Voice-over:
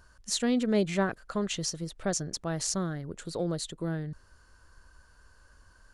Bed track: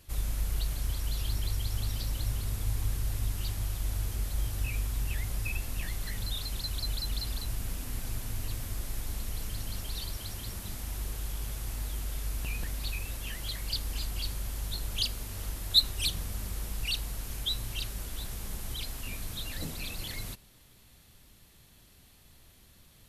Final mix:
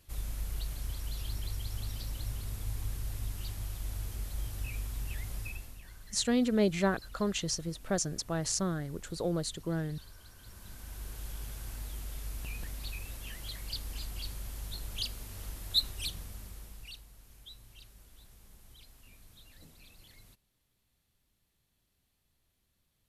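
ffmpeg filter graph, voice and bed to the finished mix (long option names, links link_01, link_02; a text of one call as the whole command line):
ffmpeg -i stem1.wav -i stem2.wav -filter_complex "[0:a]adelay=5850,volume=-1dB[link_01];[1:a]volume=5.5dB,afade=type=out:start_time=5.38:duration=0.43:silence=0.281838,afade=type=in:start_time=10.36:duration=0.9:silence=0.281838,afade=type=out:start_time=15.84:duration=1.22:silence=0.211349[link_02];[link_01][link_02]amix=inputs=2:normalize=0" out.wav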